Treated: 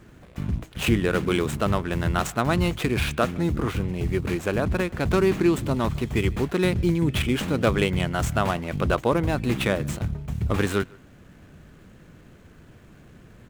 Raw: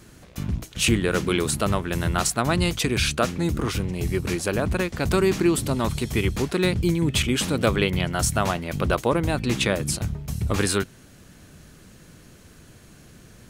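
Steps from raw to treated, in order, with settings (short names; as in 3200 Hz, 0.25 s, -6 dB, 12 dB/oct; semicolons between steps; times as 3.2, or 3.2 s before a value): median filter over 9 samples; speakerphone echo 0.15 s, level -24 dB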